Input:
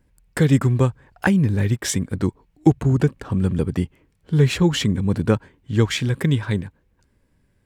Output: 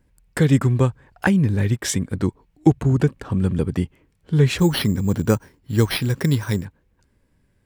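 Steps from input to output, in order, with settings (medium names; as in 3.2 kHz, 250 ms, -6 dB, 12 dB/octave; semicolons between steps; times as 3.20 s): 4.58–6.65 s: careless resampling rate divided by 6×, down none, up hold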